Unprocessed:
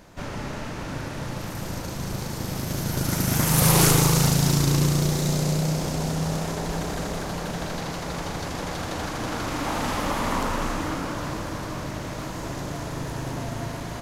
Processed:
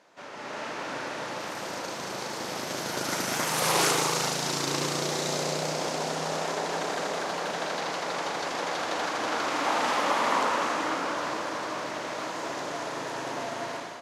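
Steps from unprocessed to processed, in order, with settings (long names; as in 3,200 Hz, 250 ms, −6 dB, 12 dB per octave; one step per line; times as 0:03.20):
high-pass filter 450 Hz 12 dB per octave
automatic gain control gain up to 9.5 dB
high-frequency loss of the air 59 metres
level −6 dB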